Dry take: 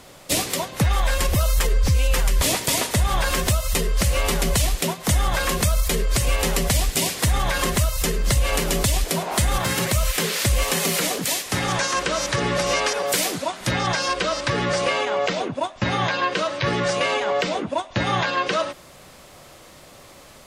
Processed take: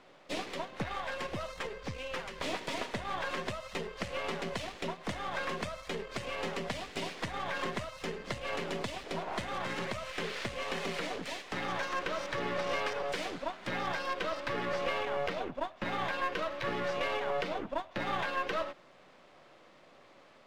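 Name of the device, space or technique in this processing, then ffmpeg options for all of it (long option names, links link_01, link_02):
crystal radio: -af "highpass=210,lowpass=3000,aeval=exprs='if(lt(val(0),0),0.447*val(0),val(0))':channel_layout=same,volume=-8dB"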